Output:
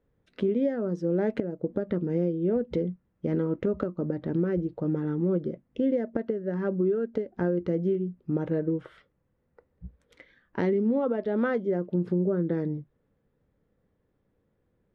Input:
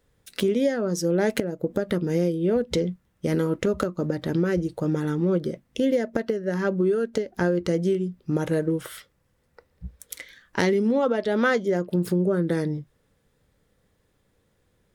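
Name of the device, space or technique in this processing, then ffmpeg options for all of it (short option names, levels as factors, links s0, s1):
phone in a pocket: -af "lowpass=3200,equalizer=f=270:t=o:w=2:g=4.5,highshelf=f=2200:g=-10.5,volume=0.473"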